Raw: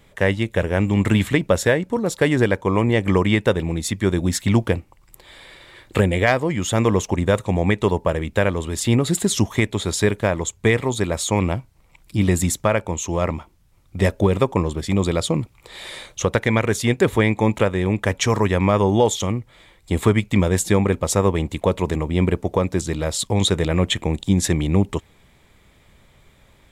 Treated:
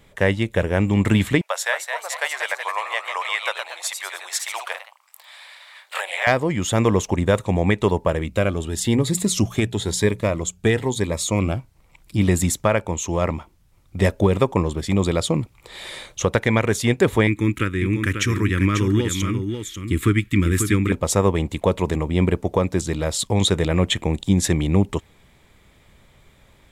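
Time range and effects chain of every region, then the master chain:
1.41–6.27 s: steep high-pass 680 Hz + ever faster or slower copies 231 ms, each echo +1 st, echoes 3, each echo -6 dB
8.27–11.56 s: hum notches 60/120/180 Hz + Shepard-style phaser rising 1 Hz
17.27–20.92 s: FFT filter 120 Hz 0 dB, 220 Hz -4 dB, 310 Hz +5 dB, 450 Hz -12 dB, 750 Hz -29 dB, 1.3 kHz +1 dB, 2.6 kHz +1 dB, 4 kHz -4 dB, 6.6 kHz -3 dB, 12 kHz +3 dB + delay 542 ms -7 dB
whole clip: none

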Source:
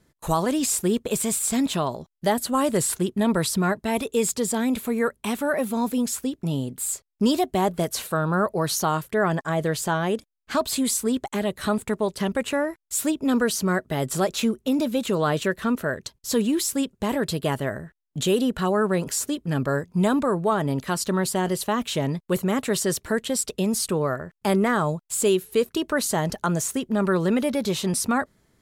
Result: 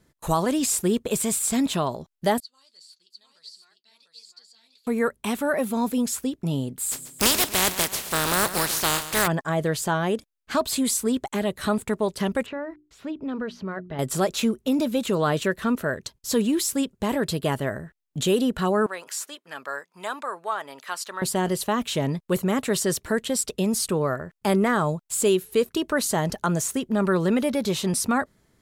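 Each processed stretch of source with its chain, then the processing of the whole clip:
2.40–4.87 s: flange 2 Hz, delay 4.2 ms, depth 4.6 ms, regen -57% + band-pass filter 4.5 kHz, Q 15 + delay 701 ms -4 dB
6.91–9.26 s: spectral contrast reduction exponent 0.28 + feedback delay 137 ms, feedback 47%, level -13 dB
12.46–13.99 s: hum notches 60/120/180/240/300/360 Hz + compression 1.5:1, threshold -39 dBFS + distance through air 270 m
18.86–21.22 s: high-pass 980 Hz + treble shelf 4 kHz -6.5 dB
whole clip: none

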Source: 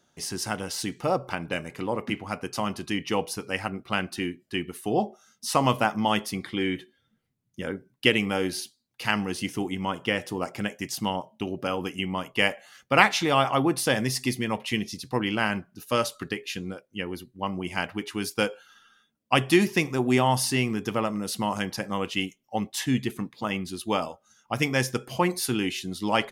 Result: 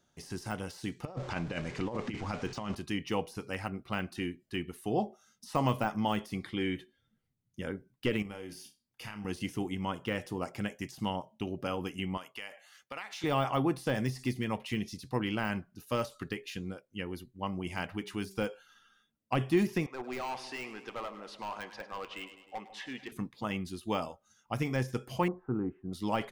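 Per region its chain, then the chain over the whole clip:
1.05–2.75 s: jump at every zero crossing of -38 dBFS + low-pass 7.4 kHz 24 dB/octave + compressor with a negative ratio -29 dBFS, ratio -0.5
8.22–9.25 s: band-stop 4 kHz, Q 5.9 + compression 5:1, threshold -35 dBFS + flutter echo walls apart 5 m, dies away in 0.22 s
12.17–13.24 s: high-pass 900 Hz 6 dB/octave + compression, threshold -31 dBFS
17.67–18.41 s: upward compressor, threshold -32 dBFS + de-hum 192.9 Hz, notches 2
19.86–23.12 s: band-pass 550–2900 Hz + hard clipper -27 dBFS + two-band feedback delay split 850 Hz, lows 152 ms, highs 102 ms, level -13.5 dB
25.28–25.93 s: block-companded coder 7-bit + elliptic low-pass 1.3 kHz, stop band 70 dB
whole clip: de-esser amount 85%; bass shelf 88 Hz +11 dB; trim -6.5 dB

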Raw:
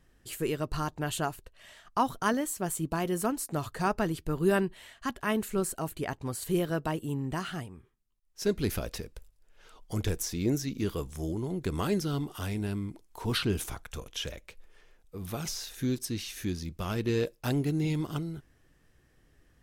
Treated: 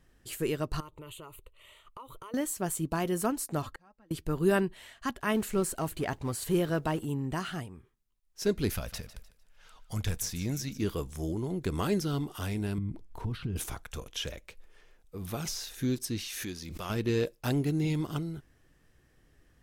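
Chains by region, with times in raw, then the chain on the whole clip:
0.80–2.34 s: static phaser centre 1.1 kHz, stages 8 + compression 12:1, threshold -42 dBFS
3.62–4.11 s: treble shelf 4.2 kHz -10 dB + comb 3.7 ms, depth 57% + inverted gate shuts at -29 dBFS, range -33 dB
5.34–7.05 s: companding laws mixed up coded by mu + treble shelf 11 kHz -4.5 dB
8.73–10.78 s: peaking EQ 370 Hz -12.5 dB 1 oct + thinning echo 151 ms, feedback 32%, high-pass 150 Hz, level -15 dB
12.78–13.56 s: compression 10:1, threshold -39 dBFS + tone controls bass +13 dB, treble -9 dB
16.27–16.90 s: bass shelf 300 Hz -12 dB + swell ahead of each attack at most 26 dB/s
whole clip: none

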